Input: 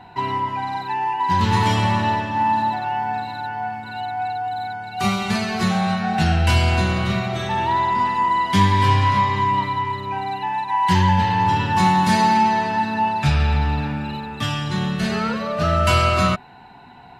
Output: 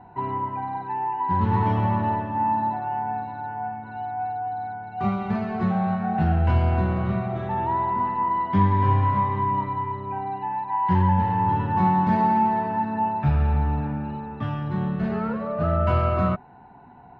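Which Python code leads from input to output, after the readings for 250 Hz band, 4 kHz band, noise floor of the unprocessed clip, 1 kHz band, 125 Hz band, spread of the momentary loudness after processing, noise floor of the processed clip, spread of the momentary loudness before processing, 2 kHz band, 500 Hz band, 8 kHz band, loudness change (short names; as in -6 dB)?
-2.5 dB, under -20 dB, -43 dBFS, -4.5 dB, -2.5 dB, 10 LU, -47 dBFS, 10 LU, -12.0 dB, -3.0 dB, under -30 dB, -4.0 dB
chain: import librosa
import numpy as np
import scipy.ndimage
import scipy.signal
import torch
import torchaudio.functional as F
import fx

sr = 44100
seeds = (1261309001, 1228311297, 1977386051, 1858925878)

y = scipy.signal.sosfilt(scipy.signal.butter(2, 1100.0, 'lowpass', fs=sr, output='sos'), x)
y = y * 10.0 ** (-2.5 / 20.0)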